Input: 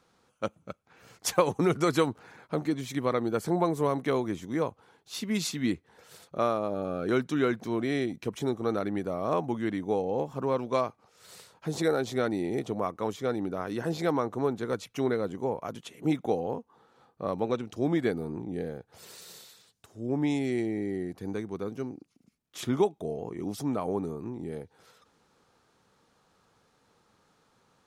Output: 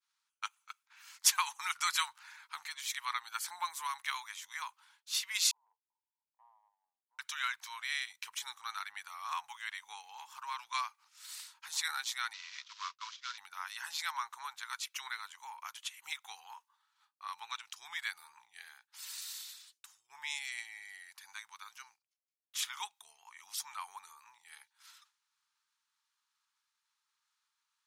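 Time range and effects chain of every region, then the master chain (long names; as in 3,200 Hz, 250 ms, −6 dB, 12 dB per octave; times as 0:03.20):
0:05.51–0:07.19: Chebyshev band-pass filter 450–1,000 Hz, order 5 + downward compressor 2 to 1, threshold −51 dBFS
0:12.33–0:13.38: variable-slope delta modulation 32 kbit/s + downward expander −36 dBFS + Chebyshev high-pass with heavy ripple 960 Hz, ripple 3 dB
whole clip: elliptic high-pass filter 910 Hz, stop band 40 dB; tilt shelving filter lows −9 dB, about 1,200 Hz; downward expander −56 dBFS; level −2.5 dB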